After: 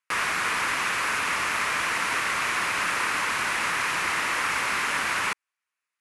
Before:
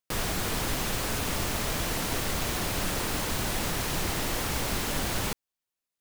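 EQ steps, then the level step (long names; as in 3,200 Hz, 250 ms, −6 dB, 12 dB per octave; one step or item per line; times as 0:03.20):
high-pass filter 460 Hz 6 dB per octave
elliptic low-pass filter 11,000 Hz, stop band 70 dB
flat-topped bell 1,600 Hz +12.5 dB
0.0 dB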